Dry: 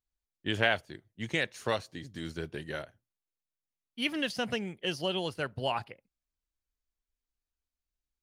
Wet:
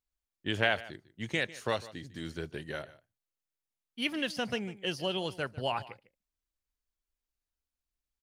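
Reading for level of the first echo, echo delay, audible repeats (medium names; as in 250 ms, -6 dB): -18.5 dB, 150 ms, 1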